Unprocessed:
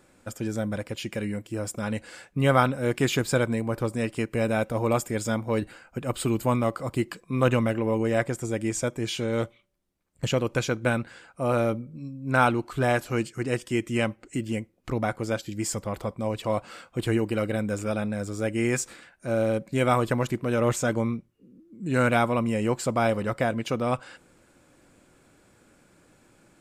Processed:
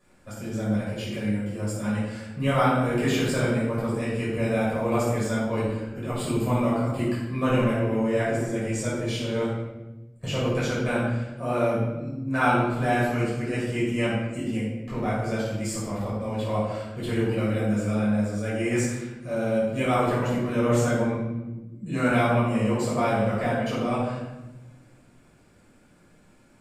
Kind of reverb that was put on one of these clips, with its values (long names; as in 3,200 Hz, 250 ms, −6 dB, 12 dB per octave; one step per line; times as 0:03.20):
rectangular room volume 510 cubic metres, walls mixed, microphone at 5.8 metres
level −12.5 dB